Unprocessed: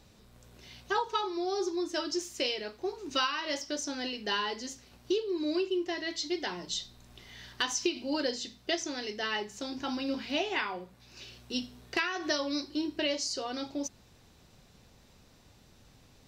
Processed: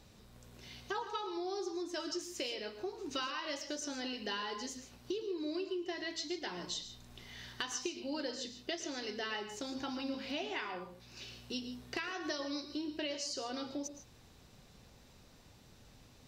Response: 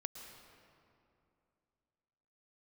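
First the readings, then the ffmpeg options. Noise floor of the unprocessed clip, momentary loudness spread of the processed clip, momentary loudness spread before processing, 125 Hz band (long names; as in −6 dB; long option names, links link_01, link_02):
−60 dBFS, 11 LU, 10 LU, −2.0 dB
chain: -filter_complex "[0:a]acompressor=threshold=-38dB:ratio=2.5[link_01];[1:a]atrim=start_sample=2205,afade=type=out:start_time=0.21:duration=0.01,atrim=end_sample=9702[link_02];[link_01][link_02]afir=irnorm=-1:irlink=0,volume=2.5dB"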